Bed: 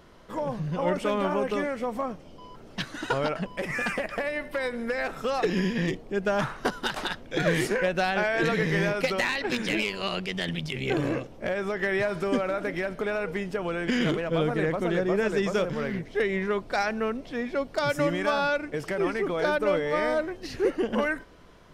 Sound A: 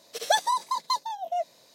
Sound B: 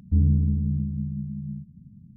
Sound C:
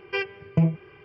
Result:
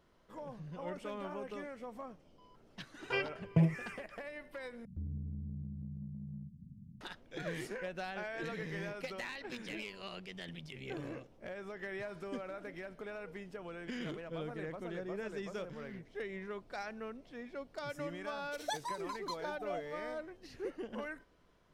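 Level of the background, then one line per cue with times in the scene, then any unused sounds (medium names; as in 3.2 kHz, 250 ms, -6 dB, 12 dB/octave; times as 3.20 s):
bed -16 dB
2.99 s: add C -7 dB
4.85 s: replace with B -5.5 dB + compression 3:1, threshold -38 dBFS
18.38 s: add A -15.5 dB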